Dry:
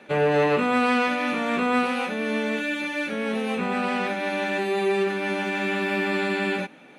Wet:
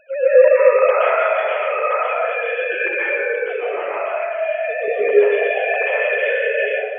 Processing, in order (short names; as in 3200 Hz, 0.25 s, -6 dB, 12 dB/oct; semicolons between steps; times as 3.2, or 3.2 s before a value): sine-wave speech; 1.51–2.72 HPF 510 Hz; spectral gate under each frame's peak -30 dB strong; dynamic EQ 670 Hz, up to +6 dB, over -39 dBFS, Q 2.7; 3.38–4.88 compressor, threshold -25 dBFS, peak gain reduction 8.5 dB; plate-style reverb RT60 1.5 s, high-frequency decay 0.6×, pre-delay 0.11 s, DRR -9.5 dB; gain -4.5 dB